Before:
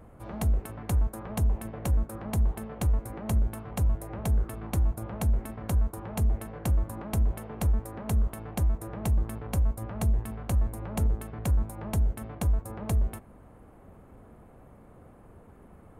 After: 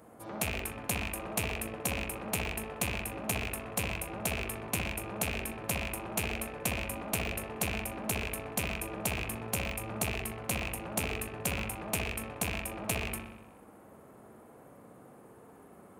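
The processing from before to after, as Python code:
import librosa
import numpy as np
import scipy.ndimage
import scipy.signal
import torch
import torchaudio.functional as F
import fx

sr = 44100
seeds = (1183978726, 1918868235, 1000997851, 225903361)

p1 = fx.rattle_buzz(x, sr, strikes_db=-28.0, level_db=-23.0)
p2 = scipy.signal.sosfilt(scipy.signal.butter(2, 130.0, 'highpass', fs=sr, output='sos'), p1)
p3 = fx.bass_treble(p2, sr, bass_db=-5, treble_db=9)
p4 = p3 + fx.echo_wet_lowpass(p3, sr, ms=62, feedback_pct=62, hz=2500.0, wet_db=-3.0, dry=0)
y = p4 * 10.0 ** (-1.0 / 20.0)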